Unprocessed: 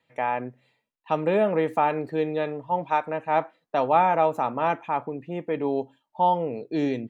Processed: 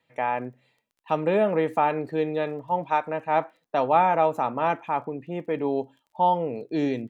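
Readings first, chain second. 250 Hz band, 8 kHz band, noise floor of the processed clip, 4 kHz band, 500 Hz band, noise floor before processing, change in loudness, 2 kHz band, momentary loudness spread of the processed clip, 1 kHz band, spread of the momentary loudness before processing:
0.0 dB, can't be measured, −76 dBFS, 0.0 dB, 0.0 dB, −78 dBFS, 0.0 dB, 0.0 dB, 9 LU, 0.0 dB, 9 LU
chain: surface crackle 18 per second −50 dBFS

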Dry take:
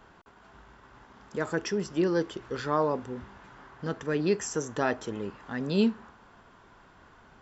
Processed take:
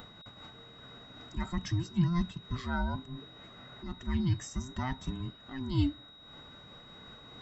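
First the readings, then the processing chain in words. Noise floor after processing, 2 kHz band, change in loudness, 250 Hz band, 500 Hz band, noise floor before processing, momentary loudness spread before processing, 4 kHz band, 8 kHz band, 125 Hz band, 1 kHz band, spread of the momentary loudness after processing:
−54 dBFS, −7.0 dB, −4.5 dB, −4.0 dB, −18.5 dB, −57 dBFS, 12 LU, −1.0 dB, can't be measured, +5.0 dB, −7.0 dB, 19 LU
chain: frequency inversion band by band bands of 500 Hz
upward compression, threshold −36 dBFS
low shelf with overshoot 270 Hz +6.5 dB, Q 1.5
steady tone 3,800 Hz −43 dBFS
amplitude modulation by smooth noise, depth 55%
level −5.5 dB

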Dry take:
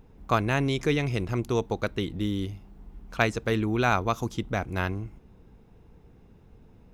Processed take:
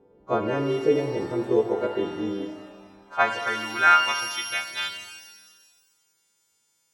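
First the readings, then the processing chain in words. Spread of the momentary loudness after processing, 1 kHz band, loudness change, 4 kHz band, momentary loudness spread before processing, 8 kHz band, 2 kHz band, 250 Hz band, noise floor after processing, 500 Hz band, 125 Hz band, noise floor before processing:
16 LU, +5.5 dB, +3.5 dB, +6.5 dB, 9 LU, +5.0 dB, +6.0 dB, −1.0 dB, −70 dBFS, +4.0 dB, −9.0 dB, −55 dBFS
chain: every partial snapped to a pitch grid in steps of 2 semitones
band-pass filter sweep 430 Hz → 7,300 Hz, 0:02.20–0:05.74
reverb with rising layers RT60 1.5 s, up +12 semitones, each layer −8 dB, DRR 6 dB
level +8.5 dB

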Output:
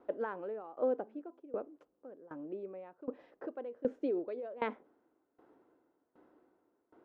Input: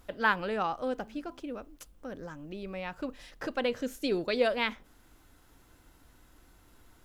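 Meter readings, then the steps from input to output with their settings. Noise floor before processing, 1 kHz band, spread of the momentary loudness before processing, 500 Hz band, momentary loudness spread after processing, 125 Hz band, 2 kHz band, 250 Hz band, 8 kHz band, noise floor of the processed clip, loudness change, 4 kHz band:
−61 dBFS, −10.5 dB, 16 LU, −4.0 dB, 16 LU, −14.5 dB, −17.5 dB, −6.0 dB, below −25 dB, −80 dBFS, −6.5 dB, below −20 dB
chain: four-pole ladder band-pass 470 Hz, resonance 35%
brickwall limiter −36.5 dBFS, peak gain reduction 11.5 dB
tremolo with a ramp in dB decaying 1.3 Hz, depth 21 dB
level +16.5 dB

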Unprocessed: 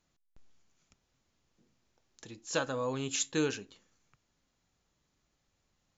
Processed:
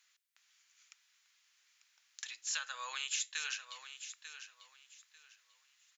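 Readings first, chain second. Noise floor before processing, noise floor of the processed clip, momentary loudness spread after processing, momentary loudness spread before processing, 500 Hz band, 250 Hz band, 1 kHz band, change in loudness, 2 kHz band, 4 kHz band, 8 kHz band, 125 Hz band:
−79 dBFS, −73 dBFS, 23 LU, 15 LU, −28.0 dB, below −40 dB, −5.5 dB, −6.5 dB, −0.5 dB, +1.0 dB, can't be measured, below −40 dB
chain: four-pole ladder high-pass 1,400 Hz, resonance 25%
downward compressor 5 to 1, threshold −50 dBFS, peak gain reduction 15.5 dB
on a send: repeating echo 894 ms, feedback 24%, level −11 dB
on the sum: level +14.5 dB

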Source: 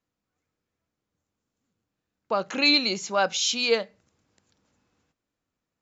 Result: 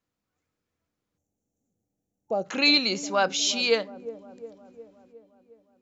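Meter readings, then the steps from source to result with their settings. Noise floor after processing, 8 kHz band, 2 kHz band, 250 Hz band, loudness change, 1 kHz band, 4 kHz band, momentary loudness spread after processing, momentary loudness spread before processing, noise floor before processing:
−84 dBFS, can't be measured, 0.0 dB, +0.5 dB, 0.0 dB, −1.0 dB, 0.0 dB, 20 LU, 10 LU, −85 dBFS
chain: gain on a spectral selection 0:01.18–0:02.45, 870–5,500 Hz −18 dB
delay with a low-pass on its return 359 ms, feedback 59%, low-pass 510 Hz, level −11 dB

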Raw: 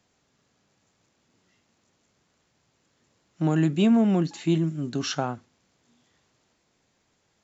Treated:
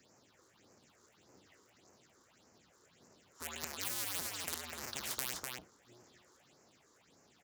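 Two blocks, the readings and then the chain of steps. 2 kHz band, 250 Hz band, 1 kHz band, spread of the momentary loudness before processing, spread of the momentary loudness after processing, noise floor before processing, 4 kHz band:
−5.5 dB, −33.0 dB, −13.5 dB, 10 LU, 9 LU, −71 dBFS, −6.0 dB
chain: sub-harmonics by changed cycles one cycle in 2, inverted
high-pass filter 130 Hz 12 dB per octave
all-pass phaser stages 6, 1.7 Hz, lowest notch 170–3,500 Hz
on a send: single-tap delay 250 ms −11.5 dB
on the sum: every bin compressed towards the loudest bin 10 to 1

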